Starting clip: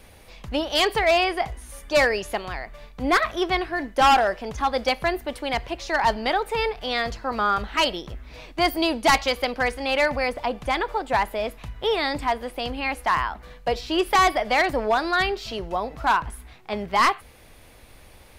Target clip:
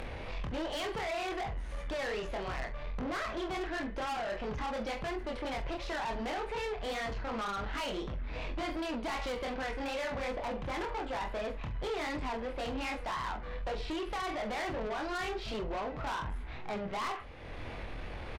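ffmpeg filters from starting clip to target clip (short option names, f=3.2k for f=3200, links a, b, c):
-af "lowpass=2.7k,acompressor=mode=upward:threshold=-31dB:ratio=2.5,alimiter=limit=-19dB:level=0:latency=1:release=16,acompressor=threshold=-26dB:ratio=12,flanger=delay=22.5:depth=4.1:speed=2.7,asoftclip=type=tanh:threshold=-37.5dB,aecho=1:1:44|46:0.15|0.237,volume=4dB"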